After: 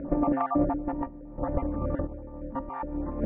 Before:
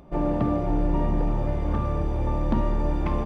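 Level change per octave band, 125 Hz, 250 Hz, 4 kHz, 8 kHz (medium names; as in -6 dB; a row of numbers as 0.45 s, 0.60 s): -10.0 dB, -2.0 dB, under -15 dB, no reading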